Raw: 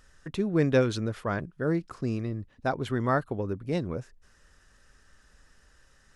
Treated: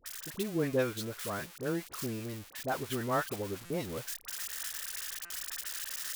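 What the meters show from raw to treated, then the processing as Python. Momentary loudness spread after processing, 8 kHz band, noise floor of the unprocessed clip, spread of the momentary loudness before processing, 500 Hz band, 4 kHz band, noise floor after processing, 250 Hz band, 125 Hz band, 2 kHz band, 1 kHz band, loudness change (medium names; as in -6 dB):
7 LU, +13.0 dB, -61 dBFS, 9 LU, -6.0 dB, +3.5 dB, -53 dBFS, -7.5 dB, -10.0 dB, -3.0 dB, -4.5 dB, -6.5 dB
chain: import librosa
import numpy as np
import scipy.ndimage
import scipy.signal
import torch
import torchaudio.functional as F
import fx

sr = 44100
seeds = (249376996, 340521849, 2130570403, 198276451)

y = x + 0.5 * 10.0 ** (-21.5 / 20.0) * np.diff(np.sign(x), prepend=np.sign(x[:1]))
y = fx.bass_treble(y, sr, bass_db=-5, treble_db=-5)
y = fx.rider(y, sr, range_db=10, speed_s=2.0)
y = fx.dispersion(y, sr, late='highs', ms=58.0, hz=1000.0)
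y = fx.buffer_glitch(y, sr, at_s=(3.65, 5.25), block=256, repeats=8)
y = F.gain(torch.from_numpy(y), -5.5).numpy()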